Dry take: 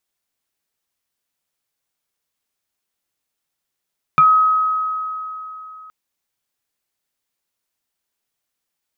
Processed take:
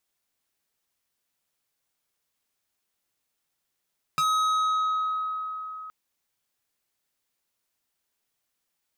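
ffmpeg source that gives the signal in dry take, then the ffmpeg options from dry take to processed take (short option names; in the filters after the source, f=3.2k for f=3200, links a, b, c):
-f lavfi -i "aevalsrc='0.447*pow(10,-3*t/3.42)*sin(2*PI*1270*t+0.55*pow(10,-3*t/0.13)*sin(2*PI*0.88*1270*t))':d=1.72:s=44100"
-af "asoftclip=type=tanh:threshold=-23dB"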